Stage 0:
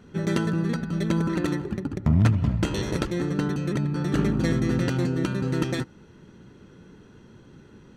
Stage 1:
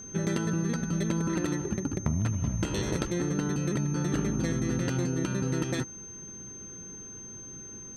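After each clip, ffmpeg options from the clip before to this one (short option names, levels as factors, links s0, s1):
-af "acompressor=threshold=0.0562:ratio=6,aeval=exprs='val(0)+0.00794*sin(2*PI*6300*n/s)':c=same"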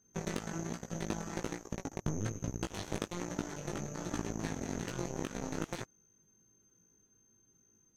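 -af "aeval=exprs='0.237*(cos(1*acos(clip(val(0)/0.237,-1,1)))-cos(1*PI/2))+0.0376*(cos(7*acos(clip(val(0)/0.237,-1,1)))-cos(7*PI/2))':c=same,flanger=delay=17:depth=2.6:speed=1.2,volume=0.841"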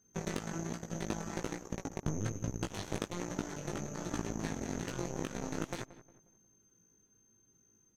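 -filter_complex "[0:a]asplit=2[s0][s1];[s1]adelay=179,lowpass=f=1600:p=1,volume=0.178,asplit=2[s2][s3];[s3]adelay=179,lowpass=f=1600:p=1,volume=0.4,asplit=2[s4][s5];[s5]adelay=179,lowpass=f=1600:p=1,volume=0.4,asplit=2[s6][s7];[s7]adelay=179,lowpass=f=1600:p=1,volume=0.4[s8];[s0][s2][s4][s6][s8]amix=inputs=5:normalize=0"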